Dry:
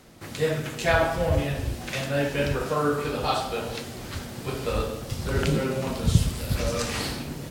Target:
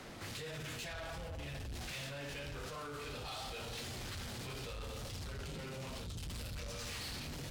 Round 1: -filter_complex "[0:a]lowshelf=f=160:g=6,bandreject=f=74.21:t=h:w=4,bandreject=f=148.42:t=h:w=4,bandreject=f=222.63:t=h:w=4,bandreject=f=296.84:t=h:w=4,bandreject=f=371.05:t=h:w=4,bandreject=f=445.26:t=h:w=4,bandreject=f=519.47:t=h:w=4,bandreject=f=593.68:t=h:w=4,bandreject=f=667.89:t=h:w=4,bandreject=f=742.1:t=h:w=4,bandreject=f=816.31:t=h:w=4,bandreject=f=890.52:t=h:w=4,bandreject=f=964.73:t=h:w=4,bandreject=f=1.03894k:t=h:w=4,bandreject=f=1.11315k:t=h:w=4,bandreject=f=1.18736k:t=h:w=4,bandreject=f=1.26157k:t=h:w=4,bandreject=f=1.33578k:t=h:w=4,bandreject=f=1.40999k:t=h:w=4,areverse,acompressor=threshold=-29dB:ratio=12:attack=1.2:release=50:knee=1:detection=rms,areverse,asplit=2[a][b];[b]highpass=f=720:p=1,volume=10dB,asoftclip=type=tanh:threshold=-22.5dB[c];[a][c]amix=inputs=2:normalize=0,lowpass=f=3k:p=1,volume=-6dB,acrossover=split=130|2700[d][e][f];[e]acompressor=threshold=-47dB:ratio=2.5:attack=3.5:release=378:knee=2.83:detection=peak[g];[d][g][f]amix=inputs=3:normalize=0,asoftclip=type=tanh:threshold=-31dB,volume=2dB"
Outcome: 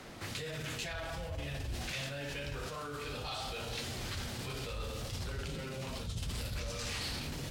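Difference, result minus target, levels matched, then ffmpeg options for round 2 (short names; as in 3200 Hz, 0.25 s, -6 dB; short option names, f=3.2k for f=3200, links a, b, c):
soft clip: distortion -13 dB
-filter_complex "[0:a]lowshelf=f=160:g=6,bandreject=f=74.21:t=h:w=4,bandreject=f=148.42:t=h:w=4,bandreject=f=222.63:t=h:w=4,bandreject=f=296.84:t=h:w=4,bandreject=f=371.05:t=h:w=4,bandreject=f=445.26:t=h:w=4,bandreject=f=519.47:t=h:w=4,bandreject=f=593.68:t=h:w=4,bandreject=f=667.89:t=h:w=4,bandreject=f=742.1:t=h:w=4,bandreject=f=816.31:t=h:w=4,bandreject=f=890.52:t=h:w=4,bandreject=f=964.73:t=h:w=4,bandreject=f=1.03894k:t=h:w=4,bandreject=f=1.11315k:t=h:w=4,bandreject=f=1.18736k:t=h:w=4,bandreject=f=1.26157k:t=h:w=4,bandreject=f=1.33578k:t=h:w=4,bandreject=f=1.40999k:t=h:w=4,areverse,acompressor=threshold=-29dB:ratio=12:attack=1.2:release=50:knee=1:detection=rms,areverse,asplit=2[a][b];[b]highpass=f=720:p=1,volume=10dB,asoftclip=type=tanh:threshold=-22.5dB[c];[a][c]amix=inputs=2:normalize=0,lowpass=f=3k:p=1,volume=-6dB,acrossover=split=130|2700[d][e][f];[e]acompressor=threshold=-47dB:ratio=2.5:attack=3.5:release=378:knee=2.83:detection=peak[g];[d][g][f]amix=inputs=3:normalize=0,asoftclip=type=tanh:threshold=-42.5dB,volume=2dB"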